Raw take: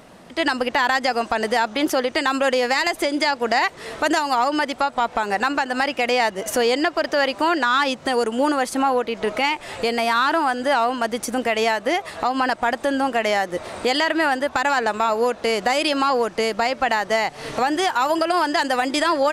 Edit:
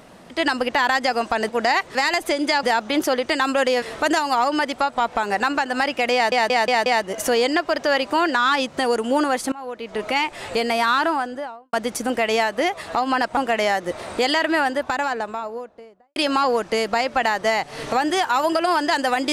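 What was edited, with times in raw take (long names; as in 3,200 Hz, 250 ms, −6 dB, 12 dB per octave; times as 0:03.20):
0:01.49–0:02.68: swap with 0:03.36–0:03.82
0:06.14: stutter 0.18 s, 5 plays
0:08.80–0:09.50: fade in, from −24 dB
0:10.23–0:11.01: fade out and dull
0:12.65–0:13.03: remove
0:14.15–0:15.82: fade out and dull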